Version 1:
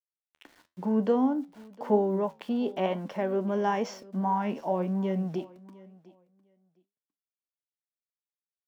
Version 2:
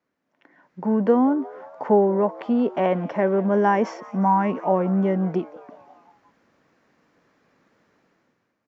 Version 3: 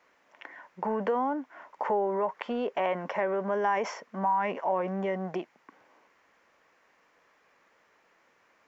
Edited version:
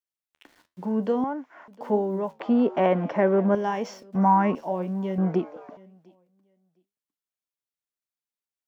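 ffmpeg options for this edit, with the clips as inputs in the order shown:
-filter_complex "[1:a]asplit=3[a][b][c];[0:a]asplit=5[d][e][f][g][h];[d]atrim=end=1.242[i];[2:a]atrim=start=1.238:end=1.682[j];[e]atrim=start=1.678:end=2.402[k];[a]atrim=start=2.398:end=3.552[l];[f]atrim=start=3.548:end=4.152[m];[b]atrim=start=4.148:end=4.552[n];[g]atrim=start=4.548:end=5.182[o];[c]atrim=start=5.178:end=5.772[p];[h]atrim=start=5.768[q];[i][j]acrossfade=d=0.004:c1=hsin:c2=hsin[r];[r][k]acrossfade=d=0.004:c1=hsin:c2=hsin[s];[s][l]acrossfade=d=0.004:c1=hsin:c2=hsin[t];[t][m]acrossfade=d=0.004:c1=hsin:c2=hsin[u];[u][n]acrossfade=d=0.004:c1=hsin:c2=hsin[v];[v][o]acrossfade=d=0.004:c1=hsin:c2=hsin[w];[w][p]acrossfade=d=0.004:c1=hsin:c2=hsin[x];[x][q]acrossfade=d=0.004:c1=hsin:c2=hsin"

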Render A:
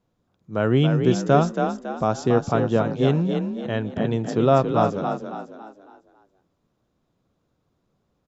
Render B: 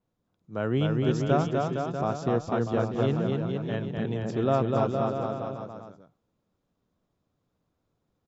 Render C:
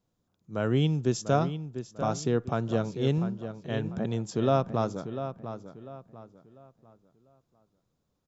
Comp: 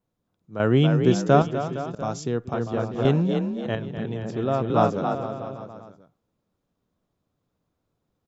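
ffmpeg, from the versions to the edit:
-filter_complex "[0:a]asplit=3[a][b][c];[1:a]asplit=5[d][e][f][g][h];[d]atrim=end=0.602[i];[a]atrim=start=0.598:end=1.422[j];[e]atrim=start=1.418:end=1.952[k];[2:a]atrim=start=1.948:end=2.542[l];[f]atrim=start=2.538:end=3.052[m];[b]atrim=start=3.048:end=3.752[n];[g]atrim=start=3.748:end=4.702[o];[c]atrim=start=4.698:end=5.152[p];[h]atrim=start=5.148[q];[i][j]acrossfade=d=0.004:c1=hsin:c2=hsin[r];[r][k]acrossfade=d=0.004:c1=hsin:c2=hsin[s];[s][l]acrossfade=d=0.004:c1=hsin:c2=hsin[t];[t][m]acrossfade=d=0.004:c1=hsin:c2=hsin[u];[u][n]acrossfade=d=0.004:c1=hsin:c2=hsin[v];[v][o]acrossfade=d=0.004:c1=hsin:c2=hsin[w];[w][p]acrossfade=d=0.004:c1=hsin:c2=hsin[x];[x][q]acrossfade=d=0.004:c1=hsin:c2=hsin"

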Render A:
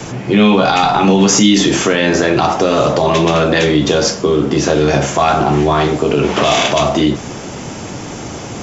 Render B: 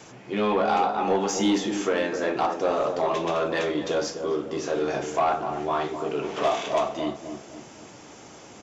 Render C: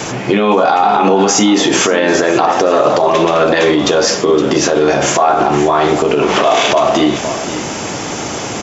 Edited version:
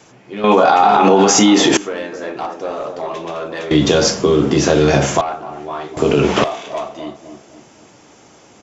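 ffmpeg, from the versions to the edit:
-filter_complex "[0:a]asplit=2[a][b];[1:a]asplit=4[c][d][e][f];[c]atrim=end=0.442[g];[2:a]atrim=start=0.438:end=1.772[h];[d]atrim=start=1.768:end=3.712[i];[a]atrim=start=3.708:end=5.212[j];[e]atrim=start=5.208:end=5.972[k];[b]atrim=start=5.968:end=6.442[l];[f]atrim=start=6.438[m];[g][h]acrossfade=d=0.004:c1=hsin:c2=hsin[n];[n][i]acrossfade=d=0.004:c1=hsin:c2=hsin[o];[o][j]acrossfade=d=0.004:c1=hsin:c2=hsin[p];[p][k]acrossfade=d=0.004:c1=hsin:c2=hsin[q];[q][l]acrossfade=d=0.004:c1=hsin:c2=hsin[r];[r][m]acrossfade=d=0.004:c1=hsin:c2=hsin"

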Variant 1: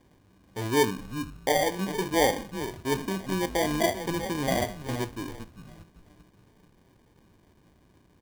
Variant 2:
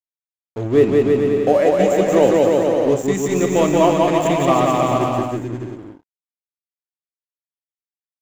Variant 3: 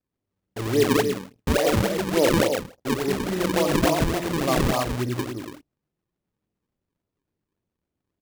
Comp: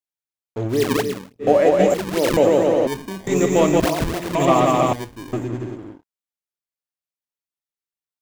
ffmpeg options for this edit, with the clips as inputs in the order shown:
-filter_complex "[2:a]asplit=3[a][b][c];[0:a]asplit=2[d][e];[1:a]asplit=6[f][g][h][i][j][k];[f]atrim=end=0.78[l];[a]atrim=start=0.68:end=1.49[m];[g]atrim=start=1.39:end=1.942[n];[b]atrim=start=1.938:end=2.372[o];[h]atrim=start=2.368:end=2.872[p];[d]atrim=start=2.868:end=3.272[q];[i]atrim=start=3.268:end=3.802[r];[c]atrim=start=3.798:end=4.352[s];[j]atrim=start=4.348:end=4.932[t];[e]atrim=start=4.928:end=5.332[u];[k]atrim=start=5.328[v];[l][m]acrossfade=d=0.1:c1=tri:c2=tri[w];[w][n]acrossfade=d=0.1:c1=tri:c2=tri[x];[x][o]acrossfade=d=0.004:c1=hsin:c2=hsin[y];[y][p]acrossfade=d=0.004:c1=hsin:c2=hsin[z];[z][q]acrossfade=d=0.004:c1=hsin:c2=hsin[aa];[aa][r]acrossfade=d=0.004:c1=hsin:c2=hsin[ab];[ab][s]acrossfade=d=0.004:c1=hsin:c2=hsin[ac];[ac][t]acrossfade=d=0.004:c1=hsin:c2=hsin[ad];[ad][u]acrossfade=d=0.004:c1=hsin:c2=hsin[ae];[ae][v]acrossfade=d=0.004:c1=hsin:c2=hsin"

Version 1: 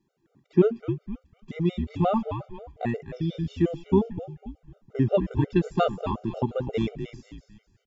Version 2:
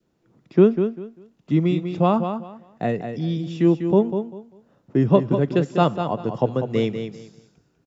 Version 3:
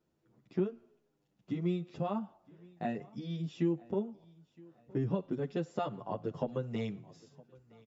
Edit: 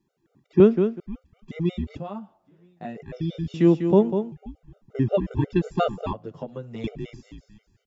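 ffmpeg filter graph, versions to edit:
-filter_complex "[1:a]asplit=2[a][b];[2:a]asplit=2[c][d];[0:a]asplit=5[e][f][g][h][i];[e]atrim=end=0.602[j];[a]atrim=start=0.598:end=1.002[k];[f]atrim=start=0.998:end=1.972[l];[c]atrim=start=1.968:end=2.972[m];[g]atrim=start=2.968:end=3.542[n];[b]atrim=start=3.538:end=4.322[o];[h]atrim=start=4.318:end=6.132[p];[d]atrim=start=6.128:end=6.842[q];[i]atrim=start=6.838[r];[j][k]acrossfade=d=0.004:c1=hsin:c2=hsin[s];[s][l]acrossfade=d=0.004:c1=hsin:c2=hsin[t];[t][m]acrossfade=d=0.004:c1=hsin:c2=hsin[u];[u][n]acrossfade=d=0.004:c1=hsin:c2=hsin[v];[v][o]acrossfade=d=0.004:c1=hsin:c2=hsin[w];[w][p]acrossfade=d=0.004:c1=hsin:c2=hsin[x];[x][q]acrossfade=d=0.004:c1=hsin:c2=hsin[y];[y][r]acrossfade=d=0.004:c1=hsin:c2=hsin"

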